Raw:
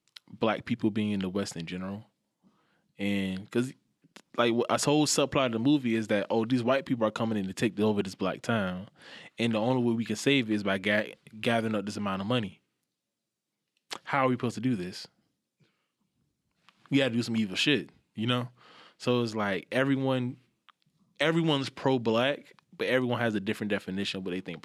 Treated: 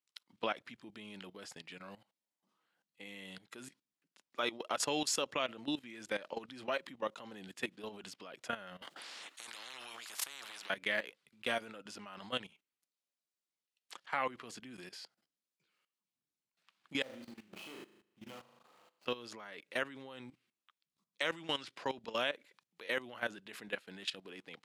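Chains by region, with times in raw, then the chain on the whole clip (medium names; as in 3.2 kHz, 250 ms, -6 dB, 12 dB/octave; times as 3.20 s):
8.82–10.70 s: resonant high-pass 290 Hz, resonance Q 3.5 + compression 8:1, threshold -23 dBFS + spectrum-flattening compressor 10:1
17.02–19.06 s: median filter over 25 samples + compression 2:1, threshold -40 dBFS + flutter echo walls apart 6.5 m, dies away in 0.63 s
whole clip: high-pass 950 Hz 6 dB/octave; level held to a coarse grid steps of 16 dB; trim -1.5 dB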